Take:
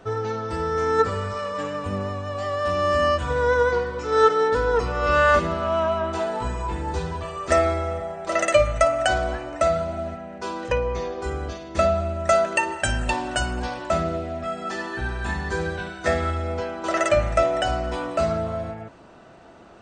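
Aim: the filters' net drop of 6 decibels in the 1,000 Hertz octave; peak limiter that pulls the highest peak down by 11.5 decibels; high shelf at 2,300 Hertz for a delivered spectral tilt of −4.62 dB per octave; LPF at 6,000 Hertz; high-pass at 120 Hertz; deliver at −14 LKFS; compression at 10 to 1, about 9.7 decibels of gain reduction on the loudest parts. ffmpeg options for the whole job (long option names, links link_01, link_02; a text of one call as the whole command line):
ffmpeg -i in.wav -af "highpass=120,lowpass=6000,equalizer=frequency=1000:width_type=o:gain=-8,highshelf=frequency=2300:gain=-3,acompressor=threshold=-25dB:ratio=10,volume=19.5dB,alimiter=limit=-5dB:level=0:latency=1" out.wav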